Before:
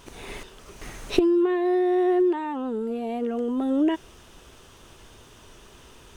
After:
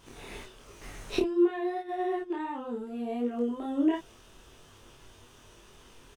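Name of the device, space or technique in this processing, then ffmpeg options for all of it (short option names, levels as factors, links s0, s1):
double-tracked vocal: -filter_complex "[0:a]asplit=2[s0][s1];[s1]adelay=29,volume=0.75[s2];[s0][s2]amix=inputs=2:normalize=0,flanger=delay=20:depth=2:speed=2.7,asettb=1/sr,asplit=3[s3][s4][s5];[s3]atrim=end=1.204[s6];[s4]atrim=start=1.2:end=2.39,asetpts=PTS-STARTPTS,afade=t=in:d=0.004:c=qsin,afade=t=out:st=1.186:d=0.004:c=qsin,agate=range=0.398:threshold=0.0316:ratio=16:detection=peak[s7];[s5]atrim=start=2.386[s8];[s6][s7]acrossfade=d=0.004:c1=hsin:c2=qsin[s9];[s9][s8]acrossfade=d=0.004:c1=qsin:c2=hsin,volume=0.631"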